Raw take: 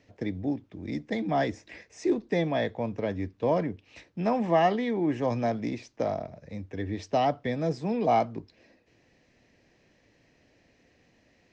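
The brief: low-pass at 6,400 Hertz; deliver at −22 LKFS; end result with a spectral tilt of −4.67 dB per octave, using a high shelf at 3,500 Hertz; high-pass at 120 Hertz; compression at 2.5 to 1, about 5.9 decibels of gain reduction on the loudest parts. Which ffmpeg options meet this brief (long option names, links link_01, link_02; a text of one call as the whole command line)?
ffmpeg -i in.wav -af "highpass=120,lowpass=6400,highshelf=frequency=3500:gain=-8,acompressor=threshold=-28dB:ratio=2.5,volume=11dB" out.wav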